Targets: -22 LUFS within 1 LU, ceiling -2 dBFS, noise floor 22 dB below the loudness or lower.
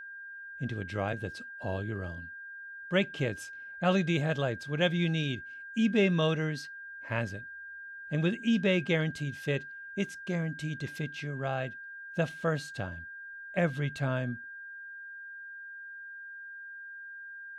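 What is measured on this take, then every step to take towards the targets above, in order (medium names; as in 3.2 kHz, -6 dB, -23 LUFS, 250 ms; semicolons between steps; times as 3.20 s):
steady tone 1.6 kHz; tone level -42 dBFS; loudness -32.0 LUFS; peak level -14.5 dBFS; loudness target -22.0 LUFS
-> band-stop 1.6 kHz, Q 30; trim +10 dB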